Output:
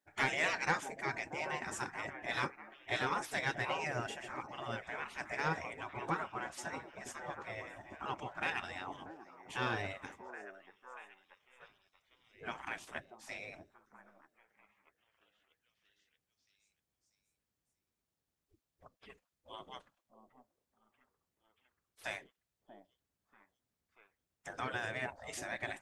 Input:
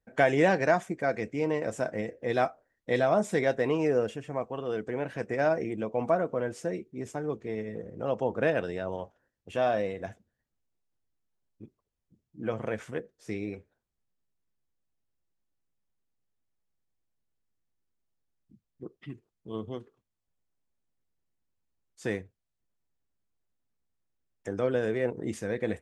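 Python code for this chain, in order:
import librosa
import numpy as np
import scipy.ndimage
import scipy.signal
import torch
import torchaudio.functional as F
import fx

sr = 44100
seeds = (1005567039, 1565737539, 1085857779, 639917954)

y = fx.echo_stepped(x, sr, ms=636, hz=570.0, octaves=0.7, feedback_pct=70, wet_db=-9.5)
y = fx.spec_gate(y, sr, threshold_db=-15, keep='weak')
y = 10.0 ** (-23.5 / 20.0) * np.tanh(y / 10.0 ** (-23.5 / 20.0))
y = y * 10.0 ** (2.0 / 20.0)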